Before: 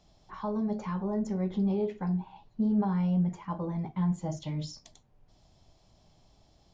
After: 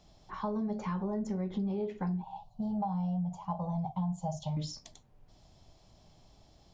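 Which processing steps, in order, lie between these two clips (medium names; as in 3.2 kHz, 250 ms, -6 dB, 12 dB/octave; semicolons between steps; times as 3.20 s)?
2.22–4.57 s: FFT filter 180 Hz 0 dB, 320 Hz -26 dB, 740 Hz +10 dB, 1.9 kHz -22 dB, 3 kHz -4 dB, 7.3 kHz +1 dB; compression 10:1, threshold -32 dBFS, peak gain reduction 9 dB; trim +2 dB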